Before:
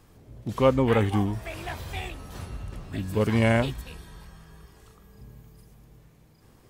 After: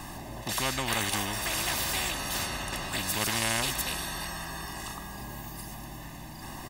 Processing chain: peaking EQ 92 Hz -6 dB 0.33 oct; comb 1.1 ms, depth 100%; spectrum-flattening compressor 4:1; trim -5 dB

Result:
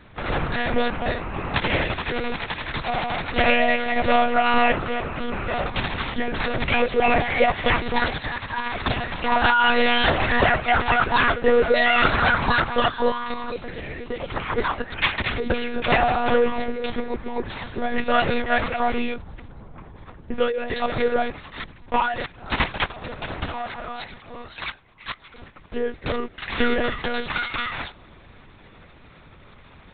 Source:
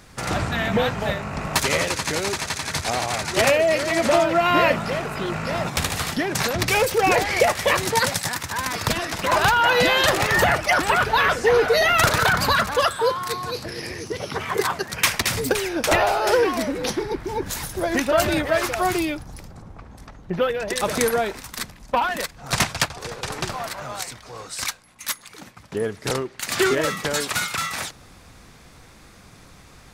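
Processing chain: monotone LPC vocoder at 8 kHz 240 Hz

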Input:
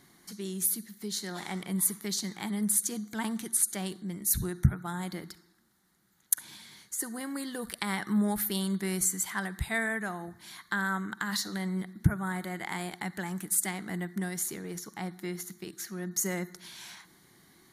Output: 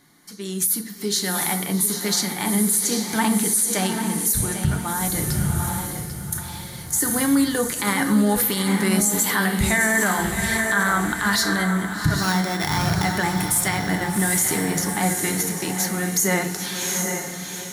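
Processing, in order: 12.17–13.04 s: sorted samples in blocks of 8 samples; peaking EQ 310 Hz -5 dB 0.21 oct; on a send: echo that smears into a reverb 785 ms, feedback 45%, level -8 dB; on the sum: level rider gain up to 13 dB; peaking EQ 66 Hz -4.5 dB 1.4 oct; FDN reverb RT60 0.37 s, low-frequency decay 1.35×, high-frequency decay 0.65×, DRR 5.5 dB; peak limiter -12.5 dBFS, peak gain reduction 11 dB; bit-crushed delay 794 ms, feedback 35%, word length 8-bit, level -11 dB; trim +2 dB

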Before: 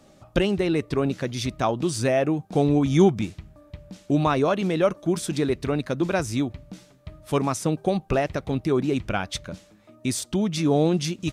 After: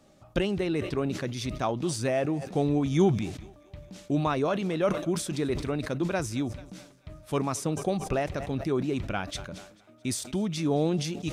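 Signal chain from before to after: thinning echo 220 ms, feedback 59%, high-pass 280 Hz, level -23.5 dB; decay stretcher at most 83 dB/s; trim -5.5 dB

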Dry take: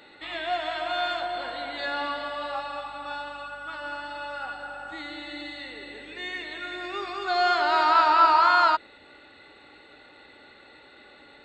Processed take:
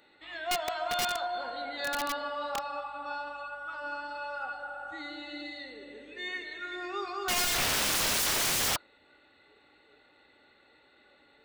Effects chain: spectral noise reduction 9 dB; integer overflow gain 21.5 dB; trim -2 dB

